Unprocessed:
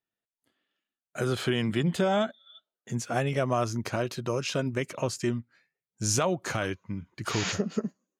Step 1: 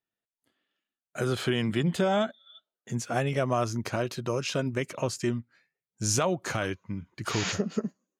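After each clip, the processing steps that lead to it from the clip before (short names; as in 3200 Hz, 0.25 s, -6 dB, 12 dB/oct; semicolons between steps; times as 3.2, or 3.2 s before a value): nothing audible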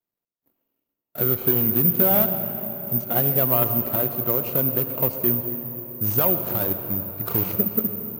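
median filter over 25 samples; reverb RT60 4.4 s, pre-delay 68 ms, DRR 7.5 dB; careless resampling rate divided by 3×, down none, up zero stuff; gain +2.5 dB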